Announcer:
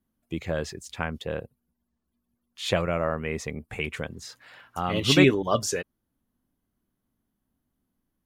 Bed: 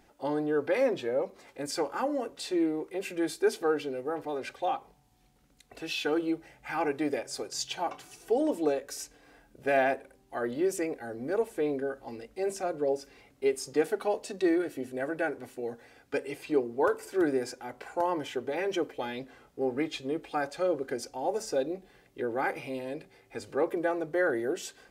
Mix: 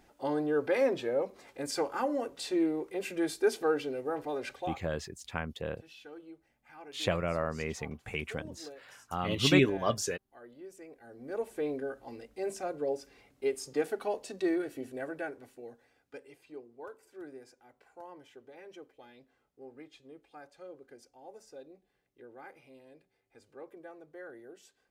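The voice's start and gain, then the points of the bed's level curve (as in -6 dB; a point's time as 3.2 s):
4.35 s, -5.5 dB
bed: 4.55 s -1 dB
4.94 s -20 dB
10.76 s -20 dB
11.5 s -4 dB
14.88 s -4 dB
16.56 s -19.5 dB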